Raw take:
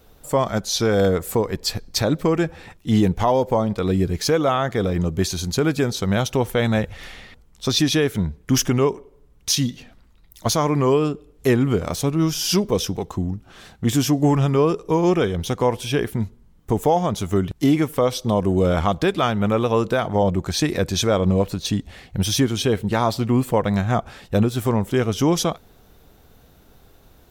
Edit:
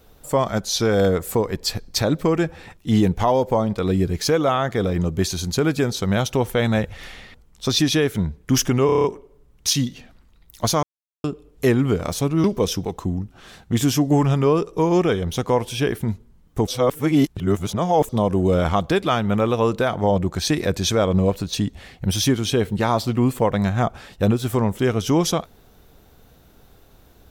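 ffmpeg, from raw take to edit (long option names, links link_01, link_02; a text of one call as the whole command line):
ffmpeg -i in.wav -filter_complex "[0:a]asplit=12[link_01][link_02][link_03][link_04][link_05][link_06][link_07][link_08][link_09][link_10][link_11][link_12];[link_01]atrim=end=8.892[link_13];[link_02]atrim=start=8.858:end=8.892[link_14];[link_03]atrim=start=8.858:end=8.892[link_15];[link_04]atrim=start=8.858:end=8.892[link_16];[link_05]atrim=start=8.858:end=8.892[link_17];[link_06]atrim=start=8.858:end=8.892[link_18];[link_07]atrim=start=8.858:end=10.65,asetpts=PTS-STARTPTS,afade=type=out:start_time=1.788:duration=0.004:curve=hsin[link_19];[link_08]atrim=start=10.65:end=11.06,asetpts=PTS-STARTPTS,volume=0[link_20];[link_09]atrim=start=11.06:end=12.262,asetpts=PTS-STARTPTS,afade=type=in:duration=0.004:curve=hsin[link_21];[link_10]atrim=start=12.558:end=16.792[link_22];[link_11]atrim=start=16.788:end=18.212,asetpts=PTS-STARTPTS,areverse[link_23];[link_12]atrim=start=18.208[link_24];[link_13][link_14]acrossfade=duration=0.004:curve1=hsin:curve2=hsin[link_25];[link_25][link_15]acrossfade=duration=0.004:curve1=hsin:curve2=hsin[link_26];[link_26][link_16]acrossfade=duration=0.004:curve1=hsin:curve2=hsin[link_27];[link_27][link_17]acrossfade=duration=0.004:curve1=hsin:curve2=hsin[link_28];[link_28][link_18]acrossfade=duration=0.004:curve1=hsin:curve2=hsin[link_29];[link_19][link_20][link_21]concat=n=3:v=0:a=1[link_30];[link_29][link_30]acrossfade=duration=0.004:curve1=hsin:curve2=hsin[link_31];[link_31][link_22]acrossfade=duration=0.004:curve1=hsin:curve2=hsin[link_32];[link_32][link_23]acrossfade=duration=0.004:curve1=hsin:curve2=hsin[link_33];[link_33][link_24]acrossfade=duration=0.004:curve1=hsin:curve2=hsin" out.wav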